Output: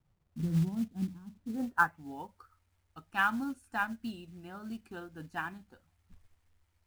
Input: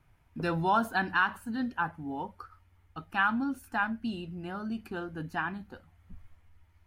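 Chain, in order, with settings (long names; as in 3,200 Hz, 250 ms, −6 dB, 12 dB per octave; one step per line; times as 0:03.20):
low-pass filter sweep 190 Hz → 8,600 Hz, 0:01.32–0:02.22
log-companded quantiser 6 bits
expander for the loud parts 1.5 to 1, over −44 dBFS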